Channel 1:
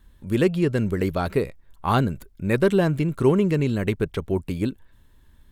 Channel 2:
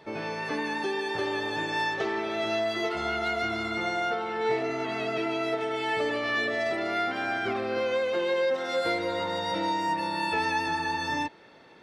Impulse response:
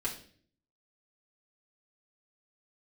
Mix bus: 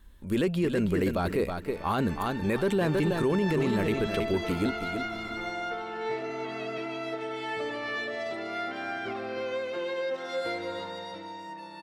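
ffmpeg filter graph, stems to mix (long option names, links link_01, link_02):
-filter_complex "[0:a]equalizer=frequency=120:width_type=o:width=0.83:gain=-8.5,volume=0dB,asplit=2[link_01][link_02];[link_02]volume=-9dB[link_03];[1:a]dynaudnorm=framelen=130:gausssize=21:maxgain=6dB,adelay=1600,volume=-11.5dB,afade=type=out:start_time=10.76:duration=0.47:silence=0.375837,asplit=2[link_04][link_05];[link_05]volume=-12.5dB[link_06];[link_03][link_06]amix=inputs=2:normalize=0,aecho=0:1:322|644|966|1288:1|0.25|0.0625|0.0156[link_07];[link_01][link_04][link_07]amix=inputs=3:normalize=0,alimiter=limit=-18.5dB:level=0:latency=1:release=11"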